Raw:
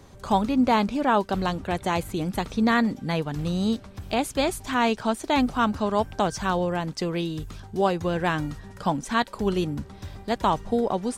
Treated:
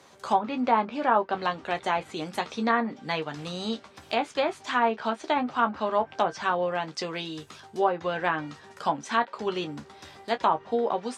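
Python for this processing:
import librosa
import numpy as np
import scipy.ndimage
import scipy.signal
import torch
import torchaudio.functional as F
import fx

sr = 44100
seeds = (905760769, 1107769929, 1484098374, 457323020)

y = fx.weighting(x, sr, curve='A')
y = fx.env_lowpass_down(y, sr, base_hz=1400.0, full_db=-20.0)
y = fx.room_early_taps(y, sr, ms=(13, 28), db=(-7.5, -13.5))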